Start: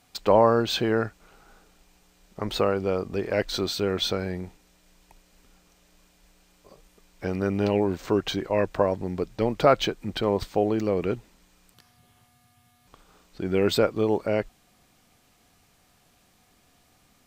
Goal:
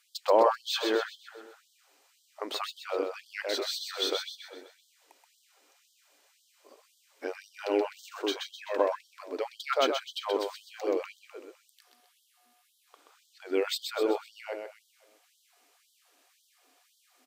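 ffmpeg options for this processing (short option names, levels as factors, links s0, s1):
-af "aecho=1:1:128|256|384|512|640|768:0.562|0.259|0.119|0.0547|0.0252|0.0116,afftfilt=real='re*gte(b*sr/1024,230*pow(3100/230,0.5+0.5*sin(2*PI*1.9*pts/sr)))':imag='im*gte(b*sr/1024,230*pow(3100/230,0.5+0.5*sin(2*PI*1.9*pts/sr)))':win_size=1024:overlap=0.75,volume=0.668"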